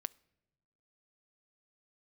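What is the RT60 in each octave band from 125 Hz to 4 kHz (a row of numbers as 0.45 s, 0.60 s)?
1.2 s, 1.4 s, 1.3 s, 1.0 s, 0.85 s, 0.70 s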